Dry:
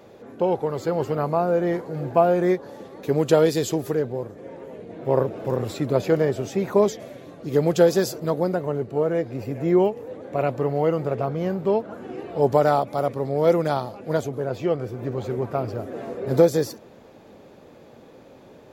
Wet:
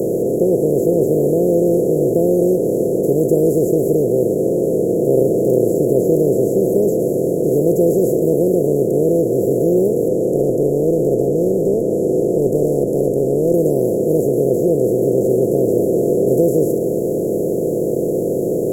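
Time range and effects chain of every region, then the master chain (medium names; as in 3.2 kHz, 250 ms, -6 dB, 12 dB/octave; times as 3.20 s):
10.08–13.54 s: low-pass 5 kHz + valve stage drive 15 dB, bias 0.7 + tape noise reduction on one side only encoder only
whole clip: spectral levelling over time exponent 0.2; inverse Chebyshev band-stop 1.2–3.7 kHz, stop band 60 dB; bass shelf 83 Hz -6.5 dB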